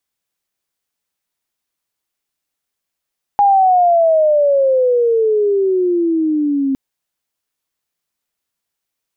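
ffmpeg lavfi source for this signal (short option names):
-f lavfi -i "aevalsrc='pow(10,(-7.5-6*t/3.36)/20)*sin(2*PI*821*3.36/(-19.5*log(2)/12)*(exp(-19.5*log(2)/12*t/3.36)-1))':d=3.36:s=44100"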